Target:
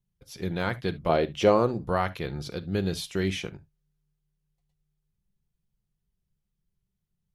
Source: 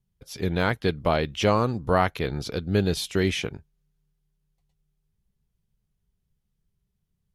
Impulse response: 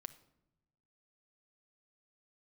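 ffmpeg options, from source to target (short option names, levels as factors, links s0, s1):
-filter_complex "[0:a]asettb=1/sr,asplit=3[s0][s1][s2];[s0]atrim=end=1.094[s3];[s1]atrim=start=1.09:end=1.84,asetpts=PTS-STARTPTS,afade=t=in:d=0.004:c=qsin,afade=t=out:st=0.746:d=0.004:c=qsin,equalizer=f=450:w=0.8:g=8.5[s4];[s2]atrim=start=1.836[s5];[s3][s4]acrossfade=d=0.004:c1=hsin:c2=qsin[s6];[s6][s5]acrossfade=d=0.004:c1=qsin:c2=hsin[s7];[1:a]atrim=start_sample=2205,atrim=end_sample=3528[s8];[s7][s8]afir=irnorm=-1:irlink=0"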